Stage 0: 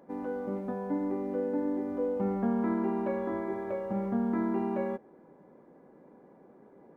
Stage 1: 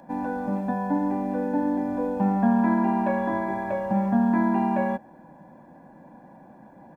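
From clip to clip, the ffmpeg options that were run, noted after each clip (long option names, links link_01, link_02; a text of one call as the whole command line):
ffmpeg -i in.wav -filter_complex "[0:a]aecho=1:1:1.2:0.97,acrossover=split=140|1100[link_01][link_02][link_03];[link_01]acompressor=threshold=-53dB:ratio=6[link_04];[link_04][link_02][link_03]amix=inputs=3:normalize=0,volume=7dB" out.wav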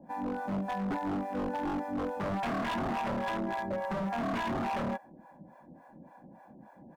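ffmpeg -i in.wav -filter_complex "[0:a]acrossover=split=570[link_01][link_02];[link_01]aeval=exprs='val(0)*(1-1/2+1/2*cos(2*PI*3.5*n/s))':channel_layout=same[link_03];[link_02]aeval=exprs='val(0)*(1-1/2-1/2*cos(2*PI*3.5*n/s))':channel_layout=same[link_04];[link_03][link_04]amix=inputs=2:normalize=0,aeval=exprs='0.0422*(abs(mod(val(0)/0.0422+3,4)-2)-1)':channel_layout=same" out.wav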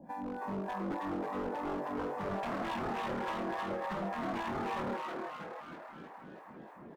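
ffmpeg -i in.wav -filter_complex "[0:a]acompressor=threshold=-41dB:ratio=2,asplit=2[link_01][link_02];[link_02]asplit=8[link_03][link_04][link_05][link_06][link_07][link_08][link_09][link_10];[link_03]adelay=318,afreqshift=140,volume=-3dB[link_11];[link_04]adelay=636,afreqshift=280,volume=-8.2dB[link_12];[link_05]adelay=954,afreqshift=420,volume=-13.4dB[link_13];[link_06]adelay=1272,afreqshift=560,volume=-18.6dB[link_14];[link_07]adelay=1590,afreqshift=700,volume=-23.8dB[link_15];[link_08]adelay=1908,afreqshift=840,volume=-29dB[link_16];[link_09]adelay=2226,afreqshift=980,volume=-34.2dB[link_17];[link_10]adelay=2544,afreqshift=1120,volume=-39.3dB[link_18];[link_11][link_12][link_13][link_14][link_15][link_16][link_17][link_18]amix=inputs=8:normalize=0[link_19];[link_01][link_19]amix=inputs=2:normalize=0" out.wav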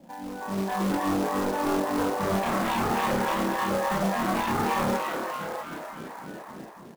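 ffmpeg -i in.wav -filter_complex "[0:a]asplit=2[link_01][link_02];[link_02]adelay=31,volume=-2dB[link_03];[link_01][link_03]amix=inputs=2:normalize=0,acrusher=bits=3:mode=log:mix=0:aa=0.000001,dynaudnorm=framelen=170:gausssize=7:maxgain=8dB" out.wav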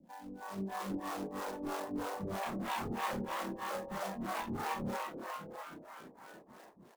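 ffmpeg -i in.wav -filter_complex "[0:a]acrossover=split=470[link_01][link_02];[link_01]aeval=exprs='val(0)*(1-1/2+1/2*cos(2*PI*3.1*n/s))':channel_layout=same[link_03];[link_02]aeval=exprs='val(0)*(1-1/2-1/2*cos(2*PI*3.1*n/s))':channel_layout=same[link_04];[link_03][link_04]amix=inputs=2:normalize=0,volume=-7.5dB" out.wav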